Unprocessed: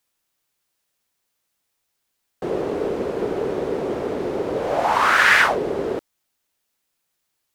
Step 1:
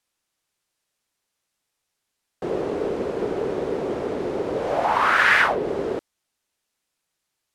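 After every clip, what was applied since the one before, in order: low-pass 11 kHz 12 dB/octave; dynamic bell 7 kHz, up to -7 dB, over -38 dBFS, Q 0.73; trim -1.5 dB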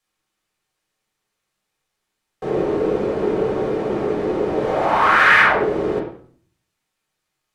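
reverberation RT60 0.50 s, pre-delay 4 ms, DRR -4 dB; trim -2 dB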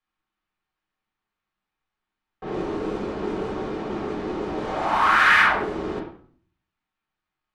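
level-controlled noise filter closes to 2.2 kHz, open at -12.5 dBFS; ten-band graphic EQ 125 Hz -8 dB, 500 Hz -12 dB, 2 kHz -4 dB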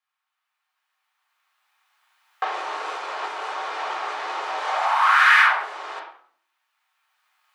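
recorder AGC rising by 9.1 dB/s; high-pass 780 Hz 24 dB/octave; trim +1.5 dB

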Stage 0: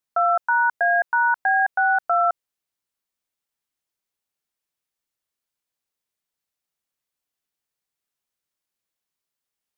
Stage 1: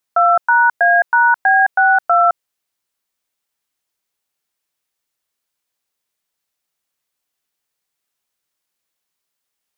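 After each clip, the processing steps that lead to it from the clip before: bass shelf 340 Hz -4.5 dB; trim +7.5 dB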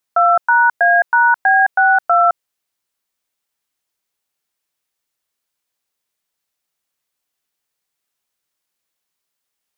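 no audible change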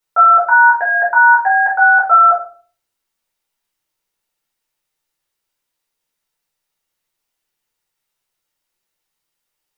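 simulated room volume 290 m³, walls furnished, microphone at 4.4 m; trim -5.5 dB

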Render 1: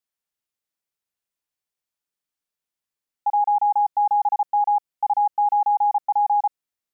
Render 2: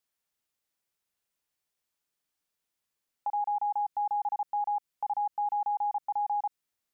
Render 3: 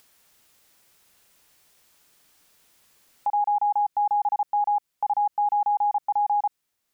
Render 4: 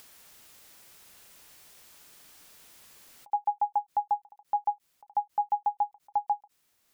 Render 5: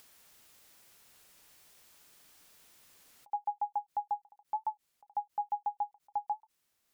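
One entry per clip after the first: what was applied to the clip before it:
peak limiter -25 dBFS, peak gain reduction 10 dB; dynamic bell 670 Hz, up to -4 dB, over -44 dBFS, Q 0.77; trim +3 dB
upward compressor, threshold -53 dBFS; trim +7 dB
peak limiter -26 dBFS, peak gain reduction 9 dB; endings held to a fixed fall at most 530 dB/s; trim +6.5 dB
warped record 33 1/3 rpm, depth 100 cents; trim -6.5 dB

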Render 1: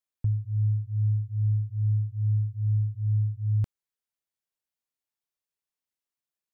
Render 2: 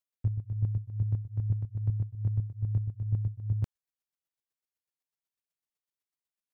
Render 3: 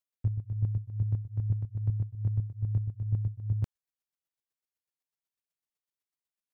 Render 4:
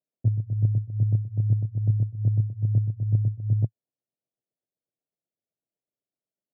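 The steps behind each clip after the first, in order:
square tremolo 8 Hz, depth 60%, duty 20%
no audible change
elliptic band-pass 110–660 Hz, stop band 40 dB; trim +9 dB

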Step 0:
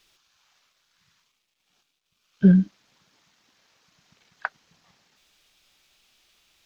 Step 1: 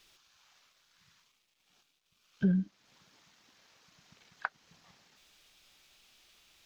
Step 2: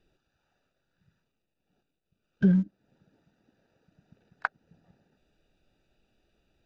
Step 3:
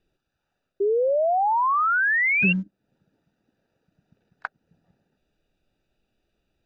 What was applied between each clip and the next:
compression 2:1, threshold -35 dBFS, peak gain reduction 13 dB
local Wiener filter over 41 samples; trim +6 dB
painted sound rise, 0.80–2.53 s, 390–2800 Hz -18 dBFS; trim -3 dB

